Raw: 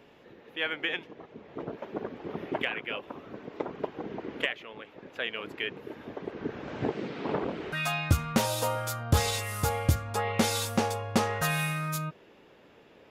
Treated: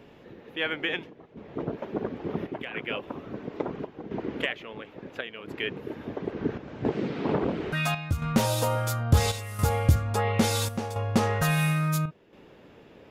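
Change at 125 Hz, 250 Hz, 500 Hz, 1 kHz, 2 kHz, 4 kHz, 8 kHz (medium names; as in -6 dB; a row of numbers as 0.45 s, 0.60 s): +5.5 dB, +4.0 dB, +2.5 dB, +1.0 dB, +0.5 dB, 0.0 dB, 0.0 dB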